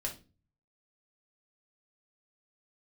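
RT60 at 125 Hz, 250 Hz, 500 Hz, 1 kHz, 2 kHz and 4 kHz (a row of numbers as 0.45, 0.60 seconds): 0.75, 0.50, 0.35, 0.25, 0.30, 0.30 seconds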